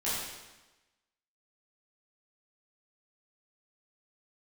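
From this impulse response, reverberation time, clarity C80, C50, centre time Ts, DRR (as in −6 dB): 1.1 s, 1.5 dB, −1.5 dB, 88 ms, −11.0 dB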